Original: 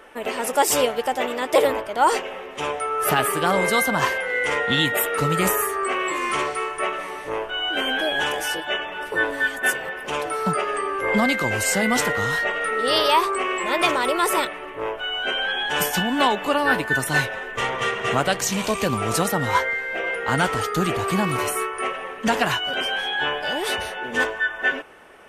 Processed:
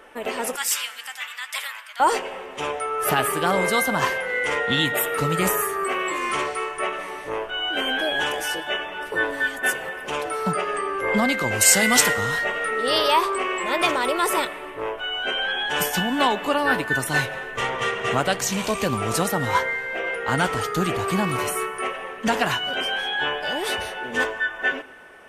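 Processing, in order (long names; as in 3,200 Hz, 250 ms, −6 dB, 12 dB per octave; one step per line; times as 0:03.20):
0:00.56–0:02.00: high-pass filter 1,400 Hz 24 dB per octave
0:11.61–0:12.14: high-shelf EQ 2,200 Hz +11 dB
dense smooth reverb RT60 2 s, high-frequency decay 0.75×, DRR 19 dB
level −1 dB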